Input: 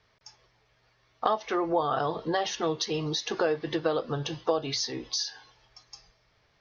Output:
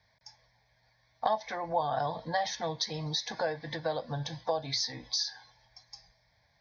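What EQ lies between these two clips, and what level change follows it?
high-pass filter 44 Hz
phaser with its sweep stopped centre 1,900 Hz, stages 8
0.0 dB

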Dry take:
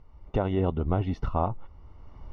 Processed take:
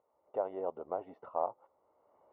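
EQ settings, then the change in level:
dynamic equaliser 980 Hz, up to +4 dB, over −44 dBFS, Q 1.8
four-pole ladder band-pass 650 Hz, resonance 50%
+1.5 dB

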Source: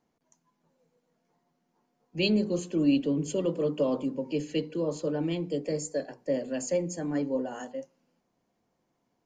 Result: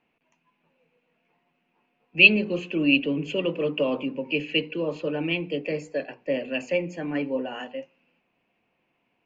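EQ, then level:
low-pass with resonance 2,600 Hz, resonance Q 9.4
low-shelf EQ 200 Hz −4.5 dB
+2.5 dB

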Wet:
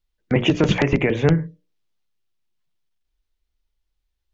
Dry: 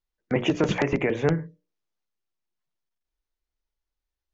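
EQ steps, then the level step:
low-shelf EQ 130 Hz +4 dB
low-shelf EQ 270 Hz +6.5 dB
parametric band 3,300 Hz +6.5 dB 1.4 octaves
+1.5 dB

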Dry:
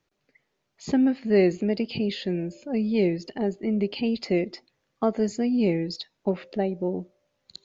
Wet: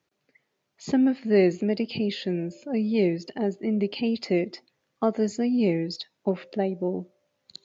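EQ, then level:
high-pass filter 100 Hz
0.0 dB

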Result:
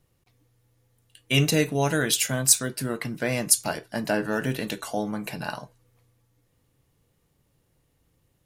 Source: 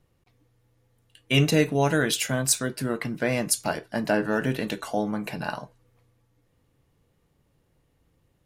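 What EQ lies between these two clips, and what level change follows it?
parametric band 120 Hz +2.5 dB 0.44 octaves
high-shelf EQ 4,300 Hz +8.5 dB
−2.0 dB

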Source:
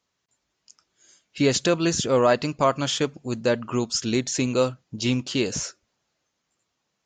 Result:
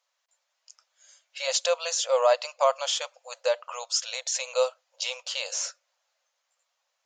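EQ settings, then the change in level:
dynamic equaliser 1,700 Hz, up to −8 dB, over −43 dBFS, Q 1.8
linear-phase brick-wall high-pass 490 Hz
0.0 dB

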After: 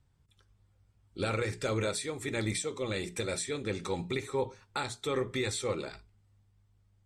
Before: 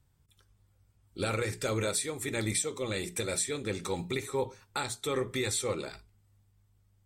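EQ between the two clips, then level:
high-frequency loss of the air 55 metres
0.0 dB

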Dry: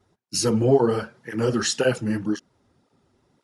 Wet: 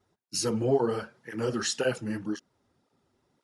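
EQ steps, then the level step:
low-shelf EQ 270 Hz −4 dB
−5.5 dB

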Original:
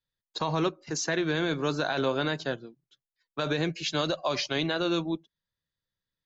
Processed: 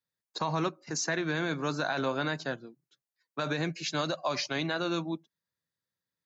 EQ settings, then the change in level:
high-pass filter 130 Hz
parametric band 3,200 Hz −8 dB 0.46 octaves
dynamic equaliser 420 Hz, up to −6 dB, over −41 dBFS, Q 1.5
0.0 dB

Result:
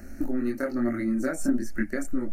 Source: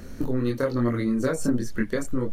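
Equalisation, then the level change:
phaser with its sweep stopped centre 690 Hz, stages 8
0.0 dB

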